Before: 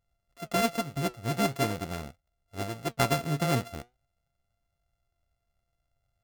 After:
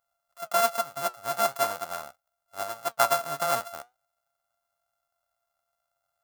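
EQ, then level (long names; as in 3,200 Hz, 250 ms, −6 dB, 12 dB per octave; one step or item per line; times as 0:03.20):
spectral tilt +4 dB per octave
flat-topped bell 920 Hz +14 dB
−7.5 dB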